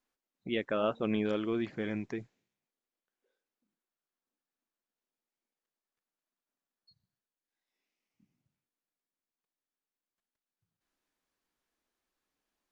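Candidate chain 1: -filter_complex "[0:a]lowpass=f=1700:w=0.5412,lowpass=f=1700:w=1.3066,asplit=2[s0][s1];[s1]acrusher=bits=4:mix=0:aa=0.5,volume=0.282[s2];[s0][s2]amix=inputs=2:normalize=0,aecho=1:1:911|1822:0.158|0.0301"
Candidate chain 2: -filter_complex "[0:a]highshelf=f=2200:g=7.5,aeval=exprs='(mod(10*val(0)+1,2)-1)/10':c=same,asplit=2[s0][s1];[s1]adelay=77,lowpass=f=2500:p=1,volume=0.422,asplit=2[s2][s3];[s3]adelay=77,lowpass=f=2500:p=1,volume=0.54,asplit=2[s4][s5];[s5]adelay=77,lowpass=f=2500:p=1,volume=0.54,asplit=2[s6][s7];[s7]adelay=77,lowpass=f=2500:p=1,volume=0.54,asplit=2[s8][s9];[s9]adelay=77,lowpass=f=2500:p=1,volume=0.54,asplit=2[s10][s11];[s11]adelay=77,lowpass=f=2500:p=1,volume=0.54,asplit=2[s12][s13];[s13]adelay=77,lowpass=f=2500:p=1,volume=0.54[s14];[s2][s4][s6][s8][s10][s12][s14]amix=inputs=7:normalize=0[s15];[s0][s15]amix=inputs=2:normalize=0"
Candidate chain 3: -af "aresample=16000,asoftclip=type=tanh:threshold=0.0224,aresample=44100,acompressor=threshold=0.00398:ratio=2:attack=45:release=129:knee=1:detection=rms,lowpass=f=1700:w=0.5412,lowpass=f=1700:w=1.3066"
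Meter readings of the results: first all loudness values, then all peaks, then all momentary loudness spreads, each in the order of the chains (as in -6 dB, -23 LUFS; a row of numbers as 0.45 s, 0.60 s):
-32.0 LUFS, -32.0 LUFS, -45.5 LUFS; -16.0 dBFS, -18.5 dBFS, -36.0 dBFS; 20 LU, 11 LU, 7 LU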